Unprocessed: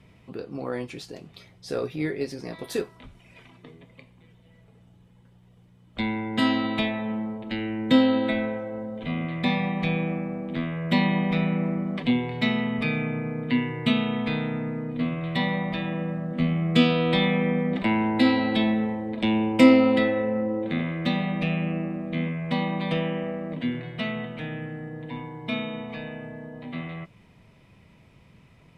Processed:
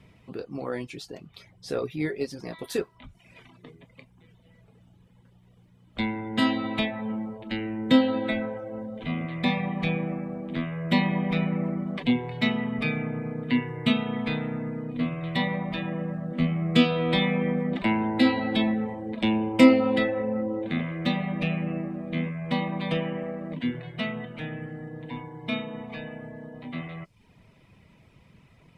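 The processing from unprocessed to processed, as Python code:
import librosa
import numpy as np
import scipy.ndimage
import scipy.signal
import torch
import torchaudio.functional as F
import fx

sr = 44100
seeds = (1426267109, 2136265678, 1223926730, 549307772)

y = fx.dereverb_blind(x, sr, rt60_s=0.57)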